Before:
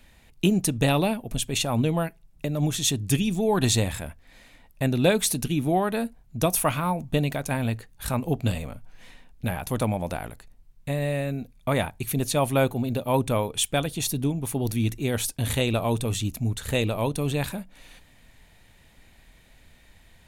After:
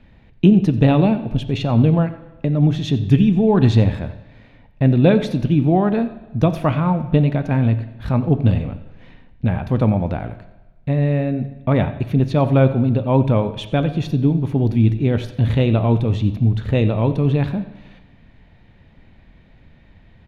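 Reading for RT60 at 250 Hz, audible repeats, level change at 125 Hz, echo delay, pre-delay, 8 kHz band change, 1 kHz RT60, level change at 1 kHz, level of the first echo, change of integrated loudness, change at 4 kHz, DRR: 1.1 s, 1, +11.0 dB, 90 ms, 10 ms, under -20 dB, 1.1 s, +3.5 dB, -17.5 dB, +8.0 dB, -4.0 dB, 10.0 dB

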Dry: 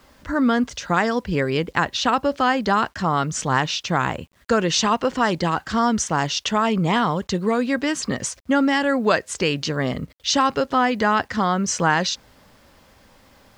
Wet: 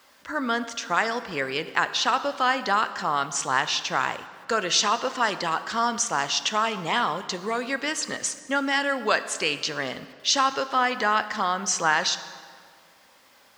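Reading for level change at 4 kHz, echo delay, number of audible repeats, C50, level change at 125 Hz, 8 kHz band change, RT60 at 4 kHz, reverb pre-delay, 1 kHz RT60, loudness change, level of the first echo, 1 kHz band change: 0.0 dB, no echo, no echo, 13.0 dB, -15.5 dB, 0.0 dB, 1.4 s, 11 ms, 1.9 s, -3.5 dB, no echo, -3.0 dB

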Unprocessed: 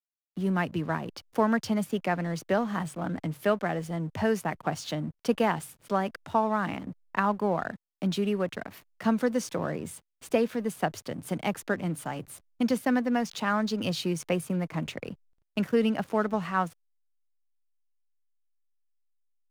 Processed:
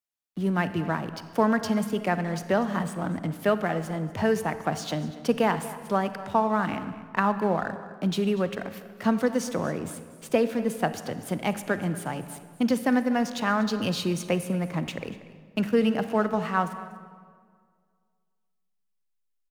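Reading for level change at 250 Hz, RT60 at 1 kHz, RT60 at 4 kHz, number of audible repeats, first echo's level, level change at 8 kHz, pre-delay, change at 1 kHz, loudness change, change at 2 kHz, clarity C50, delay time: +2.5 dB, 1.9 s, 1.3 s, 1, -17.5 dB, +2.0 dB, 32 ms, +2.5 dB, +2.5 dB, +2.5 dB, 11.0 dB, 240 ms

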